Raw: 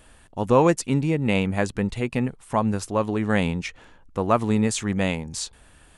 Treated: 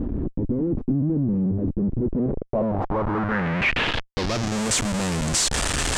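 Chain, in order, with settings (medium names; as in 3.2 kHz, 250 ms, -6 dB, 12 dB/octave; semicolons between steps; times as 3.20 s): one-bit delta coder 64 kbps, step -31.5 dBFS; reverse; compression 12:1, threshold -25 dBFS, peak gain reduction 14 dB; reverse; Schmitt trigger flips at -36.5 dBFS; low-pass sweep 290 Hz -> 8.1 kHz, 1.99–4.64 s; trim +7 dB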